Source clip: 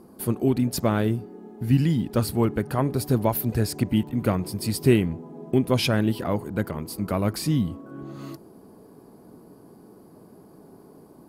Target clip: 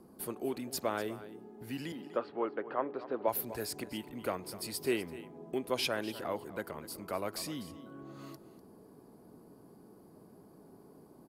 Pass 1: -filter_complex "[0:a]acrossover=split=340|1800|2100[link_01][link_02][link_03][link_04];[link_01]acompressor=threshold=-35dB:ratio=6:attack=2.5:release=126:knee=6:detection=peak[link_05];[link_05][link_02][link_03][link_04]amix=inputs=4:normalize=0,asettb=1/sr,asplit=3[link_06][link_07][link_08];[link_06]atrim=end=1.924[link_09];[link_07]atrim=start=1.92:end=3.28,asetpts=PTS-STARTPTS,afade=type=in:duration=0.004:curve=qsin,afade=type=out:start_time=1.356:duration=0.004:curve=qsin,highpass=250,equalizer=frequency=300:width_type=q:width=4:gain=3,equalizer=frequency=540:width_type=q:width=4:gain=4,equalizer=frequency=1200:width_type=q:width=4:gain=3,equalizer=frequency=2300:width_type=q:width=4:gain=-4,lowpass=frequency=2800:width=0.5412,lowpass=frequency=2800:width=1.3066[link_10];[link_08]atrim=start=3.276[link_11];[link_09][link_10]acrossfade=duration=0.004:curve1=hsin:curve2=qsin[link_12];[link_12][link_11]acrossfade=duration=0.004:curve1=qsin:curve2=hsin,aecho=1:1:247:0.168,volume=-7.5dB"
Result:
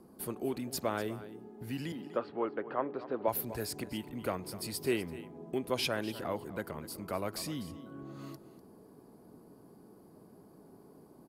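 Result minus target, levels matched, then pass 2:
downward compressor: peak gain reduction −6.5 dB
-filter_complex "[0:a]acrossover=split=340|1800|2100[link_01][link_02][link_03][link_04];[link_01]acompressor=threshold=-42.5dB:ratio=6:attack=2.5:release=126:knee=6:detection=peak[link_05];[link_05][link_02][link_03][link_04]amix=inputs=4:normalize=0,asettb=1/sr,asplit=3[link_06][link_07][link_08];[link_06]atrim=end=1.924[link_09];[link_07]atrim=start=1.92:end=3.28,asetpts=PTS-STARTPTS,afade=type=in:duration=0.004:curve=qsin,afade=type=out:start_time=1.356:duration=0.004:curve=qsin,highpass=250,equalizer=frequency=300:width_type=q:width=4:gain=3,equalizer=frequency=540:width_type=q:width=4:gain=4,equalizer=frequency=1200:width_type=q:width=4:gain=3,equalizer=frequency=2300:width_type=q:width=4:gain=-4,lowpass=frequency=2800:width=0.5412,lowpass=frequency=2800:width=1.3066[link_10];[link_08]atrim=start=3.276[link_11];[link_09][link_10]acrossfade=duration=0.004:curve1=hsin:curve2=qsin[link_12];[link_12][link_11]acrossfade=duration=0.004:curve1=qsin:curve2=hsin,aecho=1:1:247:0.168,volume=-7.5dB"

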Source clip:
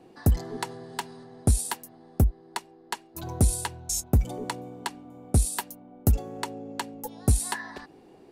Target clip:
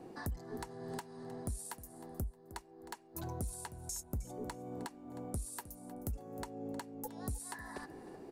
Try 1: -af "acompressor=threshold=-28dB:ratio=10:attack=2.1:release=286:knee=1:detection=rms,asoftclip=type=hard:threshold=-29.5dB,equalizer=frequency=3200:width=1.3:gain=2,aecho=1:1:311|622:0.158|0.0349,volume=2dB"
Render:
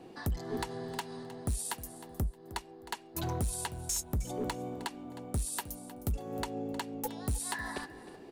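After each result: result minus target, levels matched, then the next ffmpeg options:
downward compressor: peak gain reduction −8 dB; 4,000 Hz band +4.5 dB
-af "acompressor=threshold=-37dB:ratio=10:attack=2.1:release=286:knee=1:detection=rms,asoftclip=type=hard:threshold=-29.5dB,equalizer=frequency=3200:width=1.3:gain=2,aecho=1:1:311|622:0.158|0.0349,volume=2dB"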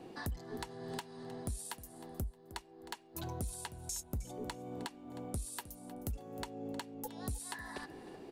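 4,000 Hz band +5.5 dB
-af "acompressor=threshold=-37dB:ratio=10:attack=2.1:release=286:knee=1:detection=rms,asoftclip=type=hard:threshold=-29.5dB,equalizer=frequency=3200:width=1.3:gain=-7.5,aecho=1:1:311|622:0.158|0.0349,volume=2dB"

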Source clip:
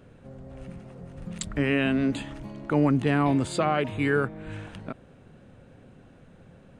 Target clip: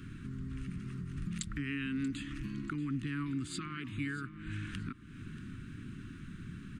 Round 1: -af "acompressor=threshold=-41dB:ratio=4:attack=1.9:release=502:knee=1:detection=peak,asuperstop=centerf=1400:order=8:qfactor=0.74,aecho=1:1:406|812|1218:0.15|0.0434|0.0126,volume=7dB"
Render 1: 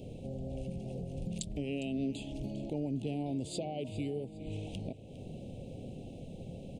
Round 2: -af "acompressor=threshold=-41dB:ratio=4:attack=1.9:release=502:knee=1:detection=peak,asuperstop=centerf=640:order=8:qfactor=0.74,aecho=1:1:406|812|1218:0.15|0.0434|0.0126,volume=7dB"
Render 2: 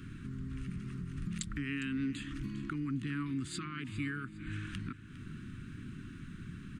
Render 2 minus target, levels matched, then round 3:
echo 228 ms early
-af "acompressor=threshold=-41dB:ratio=4:attack=1.9:release=502:knee=1:detection=peak,asuperstop=centerf=640:order=8:qfactor=0.74,aecho=1:1:634|1268|1902:0.15|0.0434|0.0126,volume=7dB"

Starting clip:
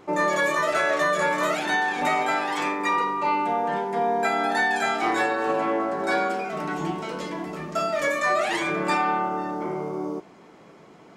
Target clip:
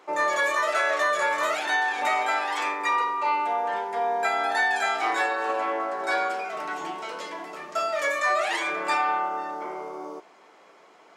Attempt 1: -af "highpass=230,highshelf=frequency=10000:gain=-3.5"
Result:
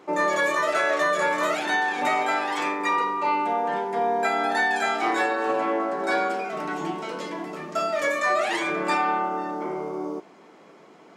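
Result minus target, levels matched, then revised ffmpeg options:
250 Hz band +9.0 dB
-af "highpass=580,highshelf=frequency=10000:gain=-3.5"

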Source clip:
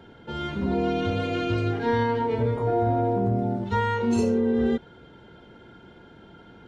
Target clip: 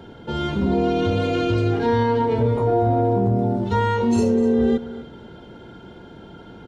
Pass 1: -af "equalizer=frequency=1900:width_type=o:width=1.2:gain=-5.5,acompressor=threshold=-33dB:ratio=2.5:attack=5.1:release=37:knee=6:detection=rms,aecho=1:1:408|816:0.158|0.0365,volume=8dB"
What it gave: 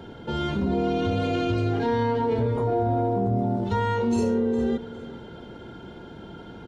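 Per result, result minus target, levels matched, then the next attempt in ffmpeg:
echo 157 ms late; downward compressor: peak gain reduction +5 dB
-af "equalizer=frequency=1900:width_type=o:width=1.2:gain=-5.5,acompressor=threshold=-33dB:ratio=2.5:attack=5.1:release=37:knee=6:detection=rms,aecho=1:1:251|502:0.158|0.0365,volume=8dB"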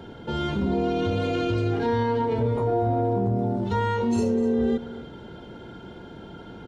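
downward compressor: peak gain reduction +5 dB
-af "equalizer=frequency=1900:width_type=o:width=1.2:gain=-5.5,acompressor=threshold=-25dB:ratio=2.5:attack=5.1:release=37:knee=6:detection=rms,aecho=1:1:251|502:0.158|0.0365,volume=8dB"

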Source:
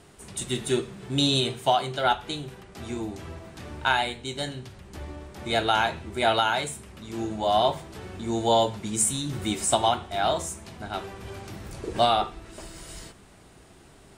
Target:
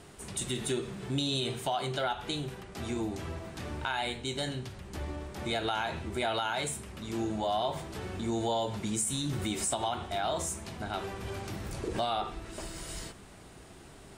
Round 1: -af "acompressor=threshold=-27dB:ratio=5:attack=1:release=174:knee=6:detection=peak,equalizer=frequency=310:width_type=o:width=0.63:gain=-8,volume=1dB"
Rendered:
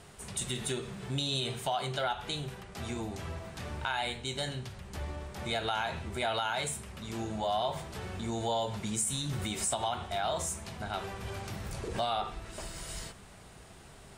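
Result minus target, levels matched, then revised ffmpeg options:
250 Hz band −3.5 dB
-af "acompressor=threshold=-27dB:ratio=5:attack=1:release=174:knee=6:detection=peak,volume=1dB"

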